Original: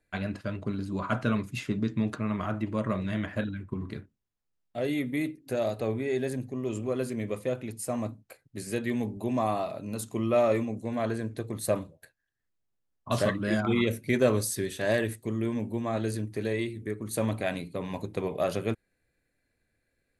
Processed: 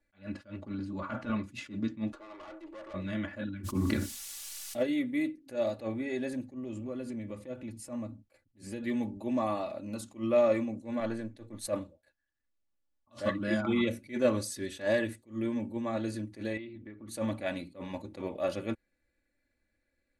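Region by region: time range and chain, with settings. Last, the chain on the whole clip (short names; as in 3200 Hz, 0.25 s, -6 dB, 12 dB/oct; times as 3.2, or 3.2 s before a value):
0.67–1.49 transient shaper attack -11 dB, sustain +1 dB + high shelf 6200 Hz -8 dB
2.12–2.94 elliptic high-pass 330 Hz + bell 2000 Hz -6.5 dB 1.5 oct + tube stage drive 41 dB, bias 0.35
3.63–4.82 added noise violet -52 dBFS + fast leveller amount 70%
6.54–8.83 low shelf 220 Hz +9.5 dB + compressor 2.5:1, threshold -34 dBFS
11–11.67 half-wave gain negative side -3 dB + three-band expander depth 70%
16.57–17.08 LPF 3900 Hz 24 dB/oct + compressor 4:1, threshold -38 dBFS
whole clip: Bessel low-pass 7200 Hz, order 2; comb 3.5 ms, depth 70%; attack slew limiter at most 230 dB/s; gain -4.5 dB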